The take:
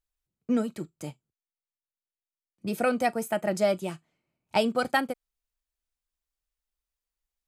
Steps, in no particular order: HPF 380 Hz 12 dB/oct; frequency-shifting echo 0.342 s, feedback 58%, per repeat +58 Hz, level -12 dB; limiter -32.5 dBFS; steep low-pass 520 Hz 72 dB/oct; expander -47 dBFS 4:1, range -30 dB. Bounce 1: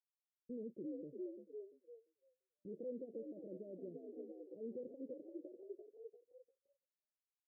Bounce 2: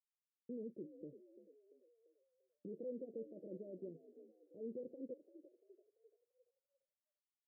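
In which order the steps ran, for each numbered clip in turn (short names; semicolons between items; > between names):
frequency-shifting echo > limiter > HPF > expander > steep low-pass; expander > limiter > HPF > frequency-shifting echo > steep low-pass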